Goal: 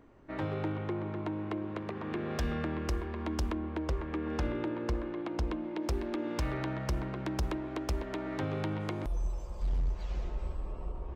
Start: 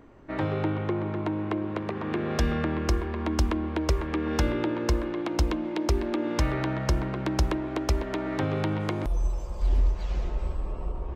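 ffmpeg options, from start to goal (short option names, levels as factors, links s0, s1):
-filter_complex "[0:a]asplit=3[s0][s1][s2];[s0]afade=t=out:st=3.51:d=0.02[s3];[s1]lowpass=f=2700:p=1,afade=t=in:st=3.51:d=0.02,afade=t=out:st=5.82:d=0.02[s4];[s2]afade=t=in:st=5.82:d=0.02[s5];[s3][s4][s5]amix=inputs=3:normalize=0,asoftclip=type=hard:threshold=0.106,volume=0.473"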